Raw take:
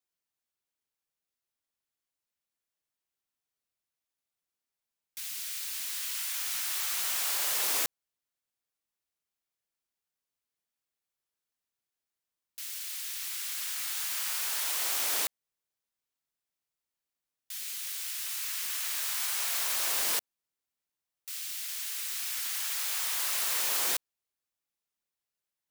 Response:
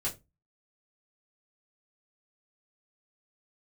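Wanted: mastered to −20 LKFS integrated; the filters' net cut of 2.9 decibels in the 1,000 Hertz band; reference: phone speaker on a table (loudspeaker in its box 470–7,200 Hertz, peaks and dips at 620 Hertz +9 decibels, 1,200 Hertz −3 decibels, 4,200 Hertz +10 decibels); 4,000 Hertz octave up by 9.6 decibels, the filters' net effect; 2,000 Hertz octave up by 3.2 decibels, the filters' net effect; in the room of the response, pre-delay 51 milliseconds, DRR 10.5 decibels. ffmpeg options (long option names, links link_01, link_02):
-filter_complex "[0:a]equalizer=frequency=1000:width_type=o:gain=-5,equalizer=frequency=2000:width_type=o:gain=3.5,equalizer=frequency=4000:width_type=o:gain=4.5,asplit=2[link_01][link_02];[1:a]atrim=start_sample=2205,adelay=51[link_03];[link_02][link_03]afir=irnorm=-1:irlink=0,volume=-14dB[link_04];[link_01][link_04]amix=inputs=2:normalize=0,highpass=frequency=470:width=0.5412,highpass=frequency=470:width=1.3066,equalizer=frequency=620:width_type=q:width=4:gain=9,equalizer=frequency=1200:width_type=q:width=4:gain=-3,equalizer=frequency=4200:width_type=q:width=4:gain=10,lowpass=frequency=7200:width=0.5412,lowpass=frequency=7200:width=1.3066,volume=7.5dB"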